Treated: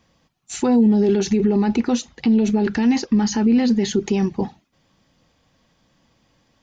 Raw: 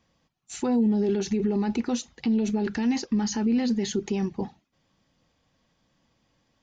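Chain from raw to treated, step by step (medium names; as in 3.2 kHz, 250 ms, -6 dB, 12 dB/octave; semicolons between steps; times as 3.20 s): 1.41–4.01 s: treble shelf 5.8 kHz -5.5 dB; trim +7.5 dB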